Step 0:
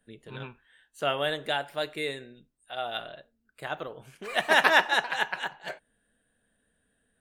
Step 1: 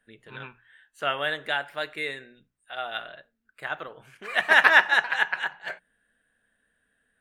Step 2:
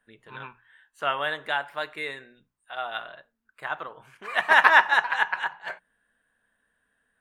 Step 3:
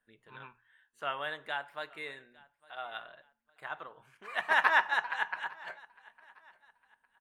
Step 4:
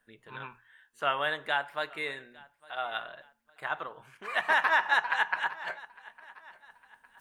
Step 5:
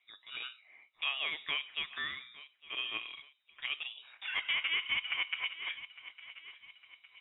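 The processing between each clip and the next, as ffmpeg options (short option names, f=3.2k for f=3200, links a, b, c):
-af "equalizer=f=1.7k:t=o:w=1.6:g=10.5,bandreject=f=60:t=h:w=6,bandreject=f=120:t=h:w=6,bandreject=f=180:t=h:w=6,volume=-4.5dB"
-af "equalizer=f=1k:t=o:w=0.68:g=9.5,volume=-2.5dB"
-af "aecho=1:1:856|1712:0.0631|0.0215,volume=-9dB"
-af "alimiter=limit=-20.5dB:level=0:latency=1:release=109,areverse,acompressor=mode=upward:threshold=-57dB:ratio=2.5,areverse,volume=7dB"
-af "lowpass=f=3.3k:t=q:w=0.5098,lowpass=f=3.3k:t=q:w=0.6013,lowpass=f=3.3k:t=q:w=0.9,lowpass=f=3.3k:t=q:w=2.563,afreqshift=-3900,acompressor=threshold=-36dB:ratio=2"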